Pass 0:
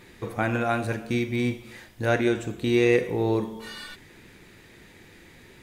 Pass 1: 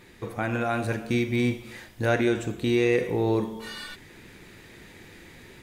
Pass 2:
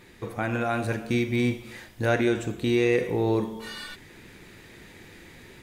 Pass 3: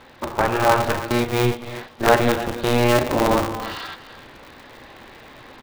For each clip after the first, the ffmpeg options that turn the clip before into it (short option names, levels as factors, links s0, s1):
-filter_complex "[0:a]asplit=2[s0][s1];[s1]alimiter=limit=0.126:level=0:latency=1,volume=1.19[s2];[s0][s2]amix=inputs=2:normalize=0,dynaudnorm=f=560:g=3:m=1.68,volume=0.376"
-af anull
-af "highpass=f=130:w=0.5412,highpass=f=130:w=1.3066,equalizer=f=180:t=q:w=4:g=-4,equalizer=f=320:t=q:w=4:g=-6,equalizer=f=700:t=q:w=4:g=6,equalizer=f=1000:t=q:w=4:g=10,equalizer=f=2200:t=q:w=4:g=-7,lowpass=f=4300:w=0.5412,lowpass=f=4300:w=1.3066,aecho=1:1:297:0.2,aeval=exprs='val(0)*sgn(sin(2*PI*120*n/s))':c=same,volume=2.11"